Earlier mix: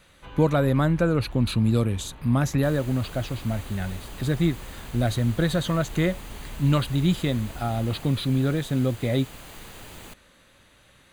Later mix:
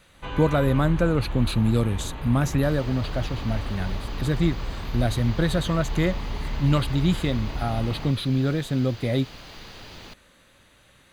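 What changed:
first sound +10.0 dB; second sound: add resonant high shelf 6.7 kHz -10.5 dB, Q 3

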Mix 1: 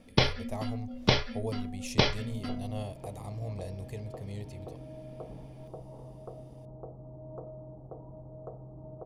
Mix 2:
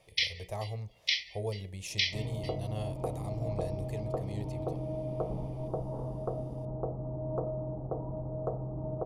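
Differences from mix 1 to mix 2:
first sound: add brick-wall FIR high-pass 1.8 kHz; second sound +9.5 dB

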